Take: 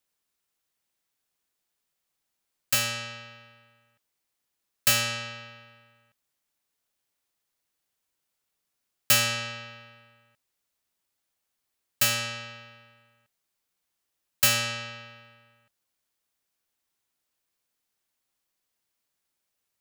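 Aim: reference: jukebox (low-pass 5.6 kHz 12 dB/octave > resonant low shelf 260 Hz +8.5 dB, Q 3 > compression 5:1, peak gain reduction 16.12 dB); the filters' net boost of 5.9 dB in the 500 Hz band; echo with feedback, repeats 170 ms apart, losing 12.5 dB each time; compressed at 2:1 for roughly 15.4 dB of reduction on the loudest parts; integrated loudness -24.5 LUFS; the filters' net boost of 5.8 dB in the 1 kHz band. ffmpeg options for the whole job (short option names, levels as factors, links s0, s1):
-af "equalizer=f=500:t=o:g=7,equalizer=f=1000:t=o:g=7.5,acompressor=threshold=0.00562:ratio=2,lowpass=5600,lowshelf=f=260:t=q:w=3:g=8.5,aecho=1:1:170|340|510:0.237|0.0569|0.0137,acompressor=threshold=0.00316:ratio=5,volume=28.2"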